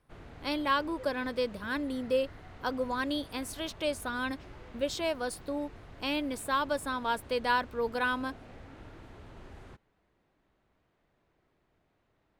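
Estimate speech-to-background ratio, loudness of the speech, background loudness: 18.0 dB, −33.0 LKFS, −51.0 LKFS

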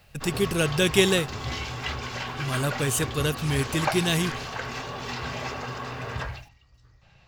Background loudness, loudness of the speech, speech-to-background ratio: −32.5 LKFS, −25.5 LKFS, 7.0 dB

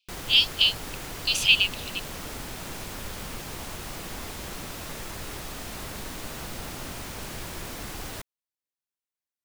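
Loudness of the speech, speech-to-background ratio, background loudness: −21.0 LKFS, 15.5 dB, −36.5 LKFS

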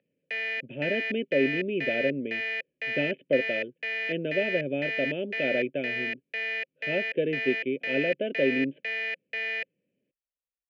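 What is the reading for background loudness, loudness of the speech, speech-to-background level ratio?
−31.0 LKFS, −30.0 LKFS, 1.0 dB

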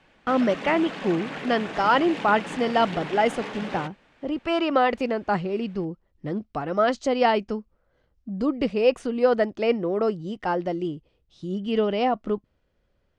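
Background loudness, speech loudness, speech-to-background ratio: −34.5 LKFS, −25.0 LKFS, 9.5 dB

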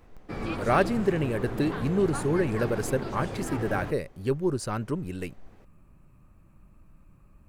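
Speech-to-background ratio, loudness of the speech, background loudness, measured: 6.5 dB, −28.5 LKFS, −35.0 LKFS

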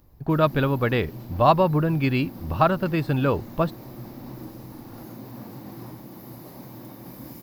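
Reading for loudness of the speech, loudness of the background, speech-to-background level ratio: −23.0 LKFS, −41.0 LKFS, 18.0 dB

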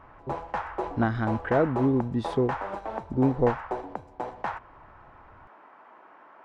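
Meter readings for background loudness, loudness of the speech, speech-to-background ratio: −35.0 LKFS, −27.0 LKFS, 8.0 dB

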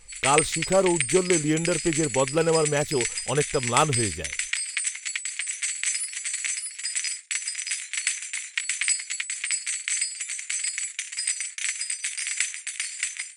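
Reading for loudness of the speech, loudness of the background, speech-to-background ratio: −25.0 LKFS, −27.0 LKFS, 2.0 dB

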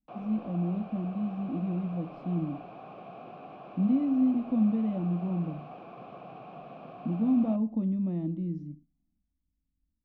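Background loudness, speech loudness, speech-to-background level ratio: −46.0 LKFS, −30.0 LKFS, 16.0 dB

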